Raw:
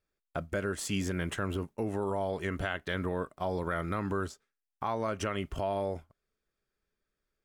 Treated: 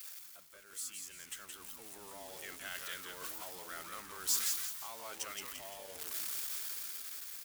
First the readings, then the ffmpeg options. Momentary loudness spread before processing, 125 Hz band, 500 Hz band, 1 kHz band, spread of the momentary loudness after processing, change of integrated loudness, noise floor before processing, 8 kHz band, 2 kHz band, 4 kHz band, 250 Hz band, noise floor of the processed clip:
4 LU, -29.5 dB, -19.5 dB, -13.0 dB, 14 LU, -5.5 dB, under -85 dBFS, +8.0 dB, -8.5 dB, +1.5 dB, -24.5 dB, -56 dBFS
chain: -filter_complex "[0:a]aeval=exprs='val(0)+0.5*0.0126*sgn(val(0))':c=same,areverse,acompressor=threshold=0.00891:ratio=6,areverse,aderivative,dynaudnorm=f=360:g=9:m=3.76,asplit=5[s0][s1][s2][s3][s4];[s1]adelay=171,afreqshift=-130,volume=0.562[s5];[s2]adelay=342,afreqshift=-260,volume=0.202[s6];[s3]adelay=513,afreqshift=-390,volume=0.0733[s7];[s4]adelay=684,afreqshift=-520,volume=0.0263[s8];[s0][s5][s6][s7][s8]amix=inputs=5:normalize=0,volume=1.19"

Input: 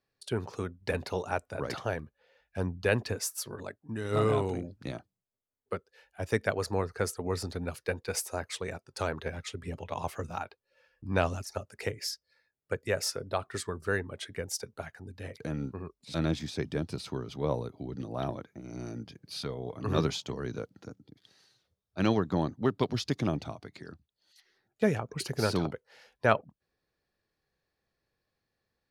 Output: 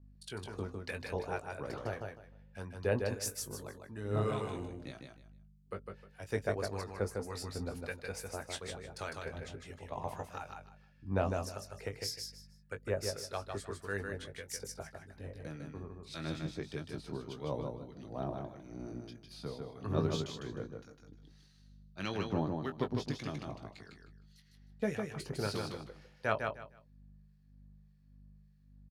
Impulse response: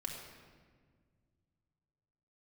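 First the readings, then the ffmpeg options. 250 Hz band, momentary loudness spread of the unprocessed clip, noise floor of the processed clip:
-6.5 dB, 14 LU, -62 dBFS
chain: -filter_complex "[0:a]aeval=exprs='val(0)+0.00224*(sin(2*PI*50*n/s)+sin(2*PI*2*50*n/s)/2+sin(2*PI*3*50*n/s)/3+sin(2*PI*4*50*n/s)/4+sin(2*PI*5*50*n/s)/5)':c=same,acrossover=split=1200[s0][s1];[s0]aeval=exprs='val(0)*(1-0.7/2+0.7/2*cos(2*PI*1.7*n/s))':c=same[s2];[s1]aeval=exprs='val(0)*(1-0.7/2-0.7/2*cos(2*PI*1.7*n/s))':c=same[s3];[s2][s3]amix=inputs=2:normalize=0,asplit=2[s4][s5];[s5]adelay=20,volume=0.376[s6];[s4][s6]amix=inputs=2:normalize=0,asplit=2[s7][s8];[s8]aecho=0:1:154|308|462:0.596|0.131|0.0288[s9];[s7][s9]amix=inputs=2:normalize=0,volume=0.596"

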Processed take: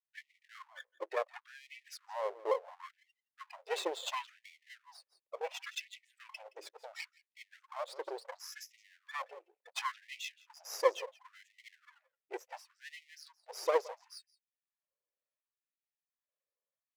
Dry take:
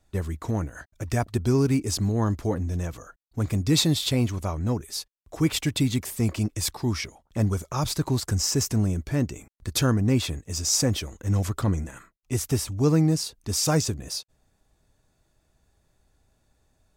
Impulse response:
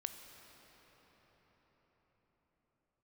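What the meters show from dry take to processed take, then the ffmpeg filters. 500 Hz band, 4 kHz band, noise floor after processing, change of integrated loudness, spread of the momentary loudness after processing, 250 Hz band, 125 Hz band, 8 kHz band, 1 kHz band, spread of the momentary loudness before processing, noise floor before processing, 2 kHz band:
-7.5 dB, -16.5 dB, under -85 dBFS, -14.0 dB, 22 LU, -33.5 dB, under -40 dB, -22.0 dB, -5.0 dB, 10 LU, -70 dBFS, -7.0 dB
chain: -filter_complex "[0:a]afftdn=nr=23:nf=-32,equalizer=f=10000:w=1.4:g=-13,acrossover=split=370[s0][s1];[s0]alimiter=limit=0.0668:level=0:latency=1:release=137[s2];[s2][s1]amix=inputs=2:normalize=0,asplit=3[s3][s4][s5];[s3]bandpass=f=530:t=q:w=8,volume=1[s6];[s4]bandpass=f=1840:t=q:w=8,volume=0.501[s7];[s5]bandpass=f=2480:t=q:w=8,volume=0.355[s8];[s6][s7][s8]amix=inputs=3:normalize=0,asplit=2[s9][s10];[s10]aecho=0:1:170:0.112[s11];[s9][s11]amix=inputs=2:normalize=0,acrossover=split=590[s12][s13];[s12]aeval=exprs='val(0)*(1-0.5/2+0.5/2*cos(2*PI*1.8*n/s))':c=same[s14];[s13]aeval=exprs='val(0)*(1-0.5/2-0.5/2*cos(2*PI*1.8*n/s))':c=same[s15];[s14][s15]amix=inputs=2:normalize=0,aeval=exprs='max(val(0),0)':c=same,afftfilt=real='re*gte(b*sr/1024,330*pow(1900/330,0.5+0.5*sin(2*PI*0.71*pts/sr)))':imag='im*gte(b*sr/1024,330*pow(1900/330,0.5+0.5*sin(2*PI*0.71*pts/sr)))':win_size=1024:overlap=0.75,volume=5.01"

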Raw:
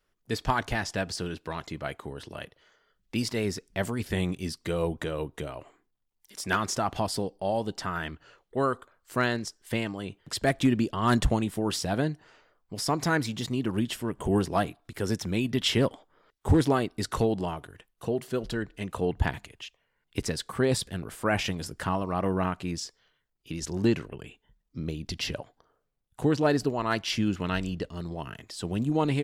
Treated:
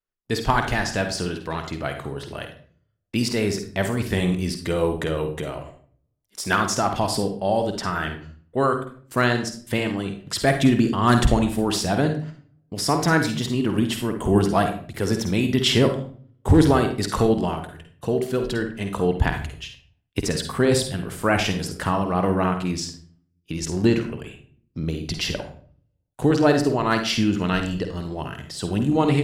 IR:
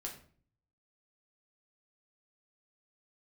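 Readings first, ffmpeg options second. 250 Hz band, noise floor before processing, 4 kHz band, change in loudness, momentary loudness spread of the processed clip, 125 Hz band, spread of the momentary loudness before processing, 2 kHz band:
+7.0 dB, -76 dBFS, +6.5 dB, +6.5 dB, 14 LU, +6.5 dB, 14 LU, +6.5 dB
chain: -filter_complex "[0:a]agate=range=0.0708:threshold=0.00316:ratio=16:detection=peak,asplit=2[s0][s1];[1:a]atrim=start_sample=2205,adelay=50[s2];[s1][s2]afir=irnorm=-1:irlink=0,volume=0.631[s3];[s0][s3]amix=inputs=2:normalize=0,volume=1.88"

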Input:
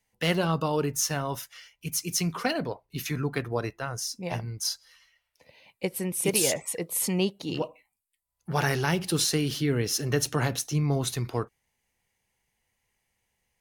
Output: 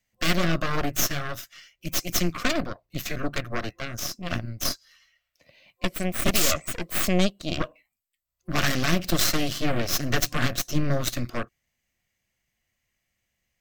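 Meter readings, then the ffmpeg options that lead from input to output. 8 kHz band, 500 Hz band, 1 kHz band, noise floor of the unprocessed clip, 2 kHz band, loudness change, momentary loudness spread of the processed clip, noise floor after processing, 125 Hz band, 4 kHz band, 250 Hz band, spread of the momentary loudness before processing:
-0.5 dB, -1.0 dB, +1.5 dB, -80 dBFS, +4.5 dB, +1.5 dB, 12 LU, -80 dBFS, -0.5 dB, +3.5 dB, +1.5 dB, 9 LU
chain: -af "aeval=exprs='0.355*(cos(1*acos(clip(val(0)/0.355,-1,1)))-cos(1*PI/2))+0.112*(cos(8*acos(clip(val(0)/0.355,-1,1)))-cos(8*PI/2))':c=same,superequalizer=7b=0.447:9b=0.316:16b=0.398"

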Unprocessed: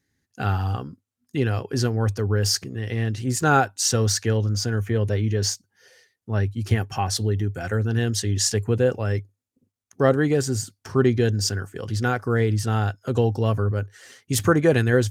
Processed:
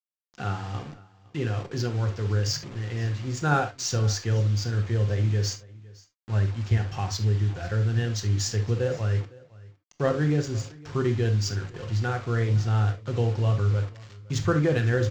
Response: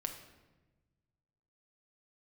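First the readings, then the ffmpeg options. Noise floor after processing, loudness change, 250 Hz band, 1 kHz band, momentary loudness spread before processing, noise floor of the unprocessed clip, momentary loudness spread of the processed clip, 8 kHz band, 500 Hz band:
-62 dBFS, -3.5 dB, -6.0 dB, -6.0 dB, 9 LU, -81 dBFS, 9 LU, -8.5 dB, -6.5 dB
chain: -filter_complex "[0:a]asubboost=boost=3.5:cutoff=110,acrossover=split=1500[s0][s1];[s1]acompressor=mode=upward:threshold=0.0126:ratio=2.5[s2];[s0][s2]amix=inputs=2:normalize=0,flanger=delay=7.6:depth=9.3:regen=-84:speed=1.1:shape=sinusoidal,aresample=16000,acrusher=bits=6:mix=0:aa=0.000001,aresample=44100,adynamicsmooth=sensitivity=6:basefreq=4700,aecho=1:1:510:0.075[s3];[1:a]atrim=start_sample=2205,atrim=end_sample=3528[s4];[s3][s4]afir=irnorm=-1:irlink=0"

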